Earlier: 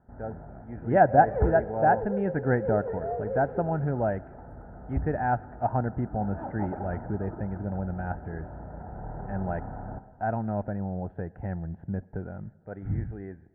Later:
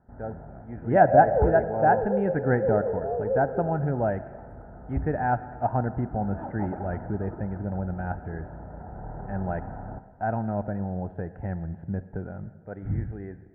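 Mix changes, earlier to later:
speech: send +9.5 dB; second sound: add resonant low-pass 710 Hz, resonance Q 8.7

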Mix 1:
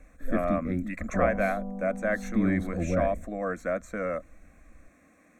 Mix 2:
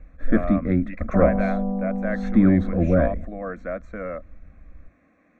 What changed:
first sound +9.5 dB; second sound +11.0 dB; master: add distance through air 220 m

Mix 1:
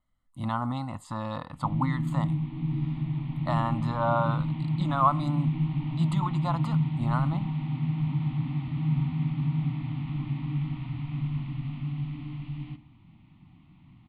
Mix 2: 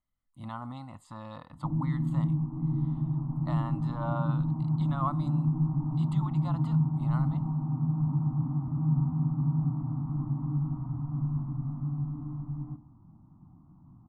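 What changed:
speech -9.5 dB; background: add steep low-pass 1.3 kHz 48 dB/octave

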